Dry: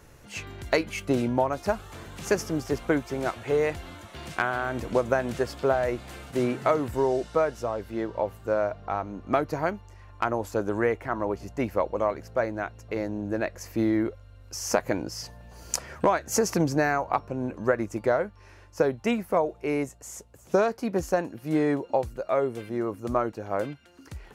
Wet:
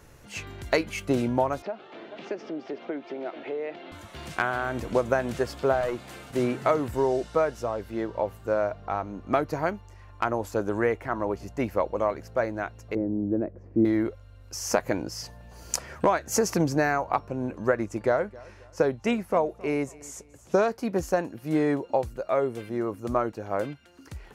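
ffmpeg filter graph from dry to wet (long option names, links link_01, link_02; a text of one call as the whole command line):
ffmpeg -i in.wav -filter_complex "[0:a]asettb=1/sr,asplit=3[link_01][link_02][link_03];[link_01]atrim=end=1.624[link_04];[link_02]atrim=start=1.62:end=3.92,asetpts=PTS-STARTPTS,afade=type=in:duration=0.004:curve=qsin,afade=type=out:start_time=2.296:duration=0.004:curve=qsin,aecho=1:1:434:0.075,atrim=end_sample=101430,acompressor=threshold=-33dB:ratio=3:attack=3.2:release=140:knee=1:detection=peak,highpass=frequency=220:width=0.5412,highpass=frequency=220:width=1.3066,equalizer=frequency=350:width_type=q:width=4:gain=5,equalizer=frequency=640:width_type=q:width=4:gain=5,equalizer=frequency=1100:width_type=q:width=4:gain=-5,equalizer=frequency=1600:width_type=q:width=4:gain=-3,lowpass=frequency=3700:width=0.5412,lowpass=frequency=3700:width=1.3066[link_05];[link_03]atrim=start=3.916[link_06];[link_04][link_05]acrossfade=duration=0.004:curve1=hsin:curve2=qsin[link_07];[link_07][link_06]acrossfade=duration=0.004:curve1=qsin:curve2=hsin,asettb=1/sr,asplit=3[link_08][link_09][link_10];[link_08]atrim=end=5.814[link_11];[link_09]atrim=start=5.81:end=6.31,asetpts=PTS-STARTPTS,afade=type=in:duration=0.004:curve=qsin,afade=type=out:start_time=0.496:duration=0.004:curve=qsin,highpass=110,aeval=exprs='clip(val(0),-1,0.0473)':channel_layout=same[link_12];[link_10]atrim=start=6.306[link_13];[link_11][link_12]acrossfade=duration=0.004:curve1=hsin:curve2=qsin[link_14];[link_14][link_13]acrossfade=duration=0.004:curve1=qsin:curve2=hsin,asettb=1/sr,asplit=3[link_15][link_16][link_17];[link_15]atrim=end=12.954[link_18];[link_16]atrim=start=12.95:end=13.85,asetpts=PTS-STARTPTS,afade=type=in:duration=0.004:curve=qsin,afade=type=out:start_time=0.896:duration=0.004:curve=qsin,bandpass=frequency=320:width_type=q:width=1.4,aemphasis=mode=reproduction:type=riaa[link_19];[link_17]atrim=start=13.846[link_20];[link_18][link_19]acrossfade=duration=0.004:curve1=hsin:curve2=qsin[link_21];[link_21][link_20]acrossfade=duration=0.004:curve1=qsin:curve2=hsin,asettb=1/sr,asplit=3[link_22][link_23][link_24];[link_22]atrim=end=17.744[link_25];[link_23]atrim=start=17.74:end=20.67,asetpts=PTS-STARTPTS,afade=type=in:duration=0.004:curve=qsin,afade=type=out:start_time=2.926:duration=0.004:curve=qsin,lowpass=11000,aecho=1:1:267|534:0.075|0.027,atrim=end_sample=129213[link_26];[link_24]atrim=start=20.666[link_27];[link_25][link_26]acrossfade=duration=0.004:curve1=hsin:curve2=qsin[link_28];[link_28][link_27]acrossfade=duration=0.004:curve1=qsin:curve2=hsin" out.wav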